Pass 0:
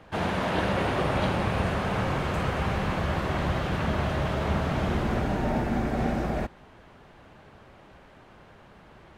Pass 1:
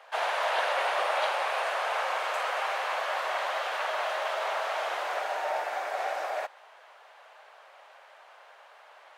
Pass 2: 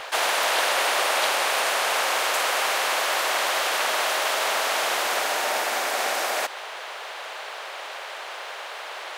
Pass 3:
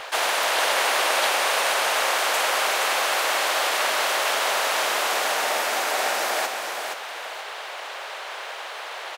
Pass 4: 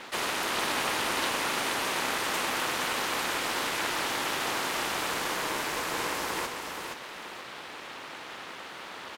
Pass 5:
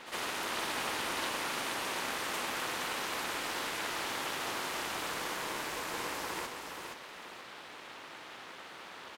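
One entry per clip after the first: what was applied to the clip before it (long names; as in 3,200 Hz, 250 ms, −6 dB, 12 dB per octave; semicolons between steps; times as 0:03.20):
Butterworth high-pass 570 Hz 36 dB per octave; level +2 dB
every bin compressed towards the loudest bin 2 to 1; level +6 dB
repeating echo 473 ms, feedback 27%, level −6 dB
ring modulation 280 Hz; level −4.5 dB
backwards echo 61 ms −10.5 dB; level −6.5 dB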